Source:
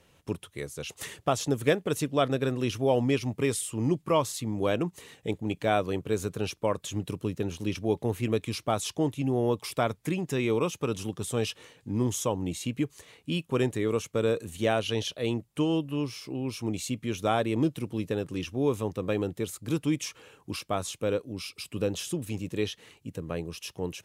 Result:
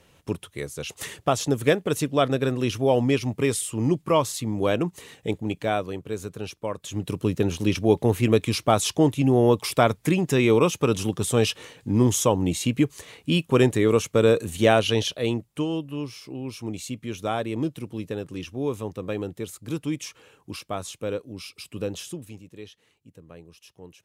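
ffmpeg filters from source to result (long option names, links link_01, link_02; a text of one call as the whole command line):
ffmpeg -i in.wav -af "volume=14.5dB,afade=type=out:start_time=5.33:duration=0.62:silence=0.473151,afade=type=in:start_time=6.79:duration=0.55:silence=0.298538,afade=type=out:start_time=14.76:duration=0.94:silence=0.354813,afade=type=out:start_time=21.97:duration=0.47:silence=0.281838" out.wav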